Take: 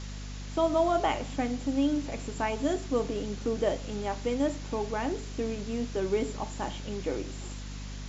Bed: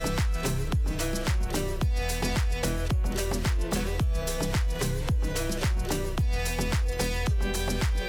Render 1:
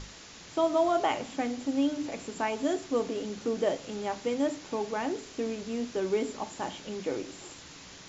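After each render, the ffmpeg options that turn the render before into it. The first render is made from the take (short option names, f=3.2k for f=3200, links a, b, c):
-af "bandreject=f=50:t=h:w=6,bandreject=f=100:t=h:w=6,bandreject=f=150:t=h:w=6,bandreject=f=200:t=h:w=6,bandreject=f=250:t=h:w=6,bandreject=f=300:t=h:w=6"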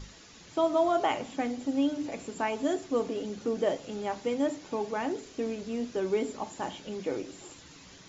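-af "afftdn=nr=7:nf=-49"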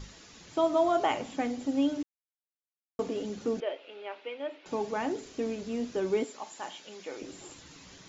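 -filter_complex "[0:a]asettb=1/sr,asplit=3[a][b][c];[a]atrim=end=3.604[d];[b]atrim=start=3.6:end=4.66,asetpts=PTS-STARTPTS,afade=t=in:d=0.004:c=qsin,afade=t=out:st=1.056:d=0.004:c=qsin,highpass=f=450:w=0.5412,highpass=f=450:w=1.3066,equalizer=f=490:t=q:w=4:g=-6,equalizer=f=760:t=q:w=4:g=-10,equalizer=f=1.1k:t=q:w=4:g=-7,equalizer=f=1.8k:t=q:w=4:g=-5,equalizer=f=2.6k:t=q:w=4:g=4,lowpass=f=3.2k:w=0.5412,lowpass=f=3.2k:w=1.3066[e];[c]atrim=start=4.656[f];[d][e]acrossfade=d=0.004:c1=hsin:c2=qsin[g];[g][f]acrossfade=d=0.004:c1=qsin:c2=hsin,asettb=1/sr,asplit=3[h][i][j];[h]atrim=end=6.244[k];[i]atrim=start=6.24:end=7.22,asetpts=PTS-STARTPTS,afade=t=in:d=0.004:c=qsin,afade=t=out:st=0.976:d=0.004:c=qsin,highpass=f=1.1k:p=1[l];[j]atrim=start=7.216[m];[k][l]acrossfade=d=0.004:c1=hsin:c2=qsin[n];[n][m]acrossfade=d=0.004:c1=qsin:c2=hsin,asplit=3[o][p][q];[o]atrim=end=2.03,asetpts=PTS-STARTPTS,afade=t=out:st=2.026:d=0.004:c=hsin[r];[p]atrim=start=2.03:end=2.99,asetpts=PTS-STARTPTS,volume=0[s];[q]atrim=start=2.99,asetpts=PTS-STARTPTS,afade=t=in:d=0.004:c=hsin[t];[r][s][t]concat=n=3:v=0:a=1"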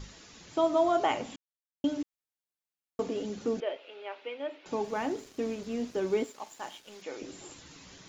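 -filter_complex "[0:a]asettb=1/sr,asplit=3[a][b][c];[a]atrim=end=3.764[d];[b]atrim=start=3.76:end=4.22,asetpts=PTS-STARTPTS,afade=t=in:d=0.004:c=qsin,afade=t=out:st=0.456:d=0.004:c=qsin,highpass=320[e];[c]atrim=start=4.216[f];[d][e]acrossfade=d=0.004:c1=hsin:c2=qsin[g];[g][f]acrossfade=d=0.004:c1=qsin:c2=hsin,asettb=1/sr,asplit=3[h][i][j];[h]atrim=end=4.844[k];[i]atrim=start=4.84:end=7.02,asetpts=PTS-STARTPTS,afade=t=in:d=0.004:c=qsin,afade=t=out:st=2.176:d=0.004:c=qsin,aeval=exprs='sgn(val(0))*max(abs(val(0))-0.00188,0)':c=same[l];[j]atrim=start=7.016[m];[k][l]acrossfade=d=0.004:c1=hsin:c2=qsin[n];[n][m]acrossfade=d=0.004:c1=qsin:c2=hsin,asplit=3[o][p][q];[o]atrim=end=1.36,asetpts=PTS-STARTPTS,afade=t=out:st=1.356:d=0.004:c=hsin[r];[p]atrim=start=1.36:end=1.84,asetpts=PTS-STARTPTS,volume=0[s];[q]atrim=start=1.84,asetpts=PTS-STARTPTS,afade=t=in:d=0.004:c=hsin[t];[r][s][t]concat=n=3:v=0:a=1"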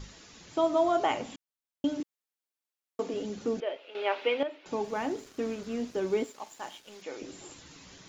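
-filter_complex "[0:a]asettb=1/sr,asplit=3[a][b][c];[a]atrim=end=2.004[d];[b]atrim=start=2:end=3.14,asetpts=PTS-STARTPTS,afade=t=in:d=0.004:c=qsin,afade=t=out:st=1.136:d=0.004:c=qsin,highpass=220[e];[c]atrim=start=3.136[f];[d][e]acrossfade=d=0.004:c1=hsin:c2=qsin[g];[g][f]acrossfade=d=0.004:c1=qsin:c2=hsin,asettb=1/sr,asplit=3[h][i][j];[h]atrim=end=5.264[k];[i]atrim=start=5.26:end=5.81,asetpts=PTS-STARTPTS,afade=t=in:d=0.004:c=qsin,afade=t=out:st=0.546:d=0.004:c=qsin,equalizer=f=1.4k:w=2.3:g=5.5[l];[j]atrim=start=5.806[m];[k][l]acrossfade=d=0.004:c1=hsin:c2=qsin[n];[n][m]acrossfade=d=0.004:c1=qsin:c2=hsin,asplit=3[o][p][q];[o]atrim=end=3.952[r];[p]atrim=start=3.948:end=4.432,asetpts=PTS-STARTPTS,volume=11.5dB[s];[q]atrim=start=4.428[t];[r][s]acrossfade=d=0.004:c1=hsin:c2=hsin[u];[u][t]acrossfade=d=0.004:c1=hsin:c2=hsin"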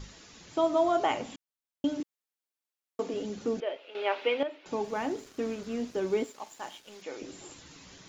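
-af anull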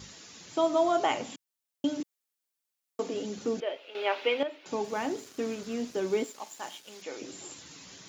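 -af "highpass=100,highshelf=f=4k:g=7"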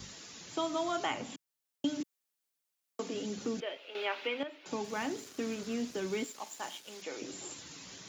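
-filter_complex "[0:a]acrossover=split=280|1100|1600[a][b][c][d];[b]acompressor=threshold=-40dB:ratio=6[e];[d]alimiter=level_in=5.5dB:limit=-24dB:level=0:latency=1:release=462,volume=-5.5dB[f];[a][e][c][f]amix=inputs=4:normalize=0"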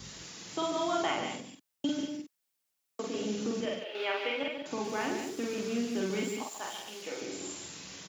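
-filter_complex "[0:a]asplit=2[a][b];[b]adelay=47,volume=-2dB[c];[a][c]amix=inputs=2:normalize=0,aecho=1:1:142.9|189.5:0.447|0.282"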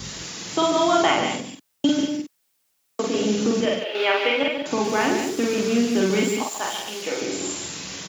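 -af "volume=12dB"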